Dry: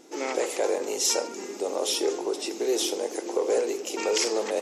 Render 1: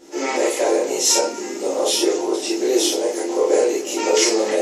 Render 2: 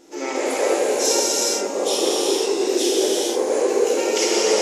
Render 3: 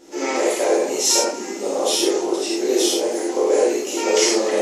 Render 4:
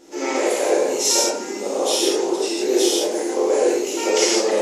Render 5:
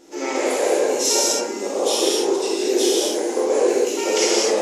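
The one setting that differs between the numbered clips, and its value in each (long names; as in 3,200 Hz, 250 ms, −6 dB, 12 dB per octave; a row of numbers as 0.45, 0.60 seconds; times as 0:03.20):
reverb whose tail is shaped and stops, gate: 80, 500, 130, 190, 290 milliseconds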